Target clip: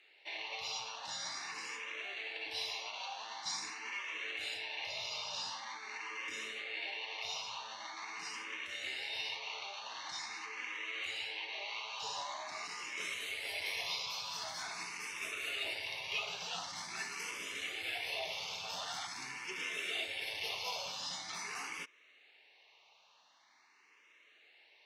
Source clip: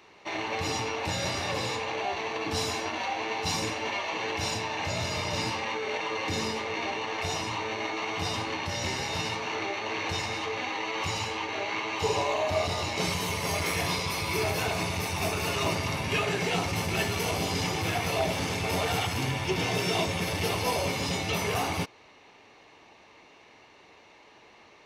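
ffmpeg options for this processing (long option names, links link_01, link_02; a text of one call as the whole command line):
ffmpeg -i in.wav -filter_complex "[0:a]bandpass=frequency=3400:width_type=q:width=0.68:csg=0,asplit=2[link_01][link_02];[link_02]afreqshift=0.45[link_03];[link_01][link_03]amix=inputs=2:normalize=1,volume=-3.5dB" out.wav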